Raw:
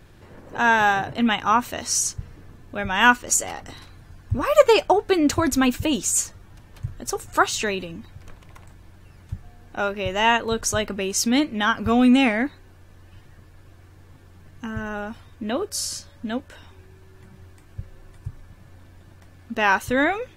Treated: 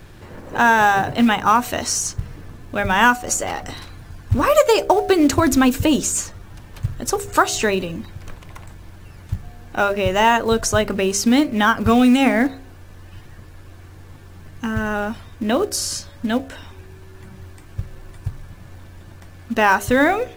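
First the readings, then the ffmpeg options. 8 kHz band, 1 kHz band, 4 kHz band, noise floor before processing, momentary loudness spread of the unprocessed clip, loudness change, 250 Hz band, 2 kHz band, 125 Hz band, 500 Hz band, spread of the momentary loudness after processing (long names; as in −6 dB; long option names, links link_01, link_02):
+1.0 dB, +4.5 dB, +2.0 dB, −49 dBFS, 20 LU, +3.5 dB, +4.5 dB, +2.5 dB, +6.5 dB, +4.0 dB, 18 LU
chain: -filter_complex "[0:a]bandreject=frequency=67.07:width_type=h:width=4,bandreject=frequency=134.14:width_type=h:width=4,bandreject=frequency=201.21:width_type=h:width=4,bandreject=frequency=268.28:width_type=h:width=4,bandreject=frequency=335.35:width_type=h:width=4,bandreject=frequency=402.42:width_type=h:width=4,bandreject=frequency=469.49:width_type=h:width=4,bandreject=frequency=536.56:width_type=h:width=4,bandreject=frequency=603.63:width_type=h:width=4,bandreject=frequency=670.7:width_type=h:width=4,bandreject=frequency=737.77:width_type=h:width=4,acrossover=split=1800|5400[link_01][link_02][link_03];[link_01]acompressor=threshold=-19dB:ratio=4[link_04];[link_02]acompressor=threshold=-37dB:ratio=4[link_05];[link_03]acompressor=threshold=-32dB:ratio=4[link_06];[link_04][link_05][link_06]amix=inputs=3:normalize=0,asplit=2[link_07][link_08];[link_08]acrusher=bits=4:mode=log:mix=0:aa=0.000001,volume=-5.5dB[link_09];[link_07][link_09]amix=inputs=2:normalize=0,volume=4dB"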